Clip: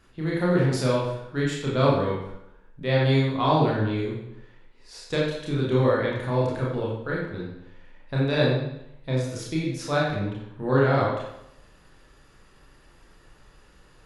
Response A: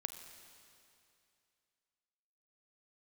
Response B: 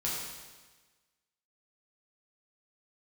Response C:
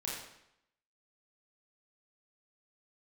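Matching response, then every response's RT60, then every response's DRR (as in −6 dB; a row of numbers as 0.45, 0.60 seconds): C; 2.6, 1.3, 0.80 seconds; 7.5, −6.5, −5.5 decibels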